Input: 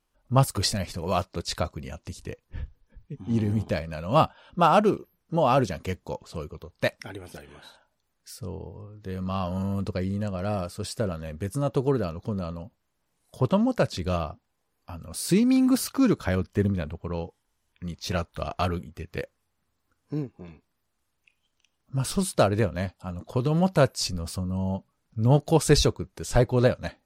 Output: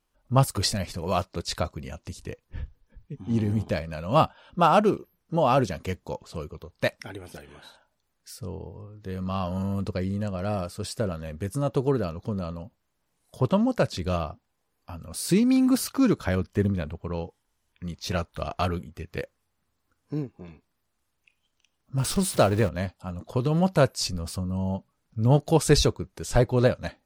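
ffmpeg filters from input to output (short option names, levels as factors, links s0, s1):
-filter_complex "[0:a]asettb=1/sr,asplit=3[s0][s1][s2];[s0]atrim=end=21.984[s3];[s1]atrim=start=21.98:end=22.69,asetpts=PTS-STARTPTS,afade=t=in:d=0.004:c=qsin,afade=t=out:st=0.706:d=0.004:c=qsin,aeval=exprs='val(0)+0.5*0.0224*sgn(val(0))':c=same[s4];[s2]atrim=start=22.686[s5];[s3][s4]acrossfade=d=0.004:c1=hsin:c2=qsin[s6];[s6][s5]acrossfade=d=0.004:c1=qsin:c2=hsin"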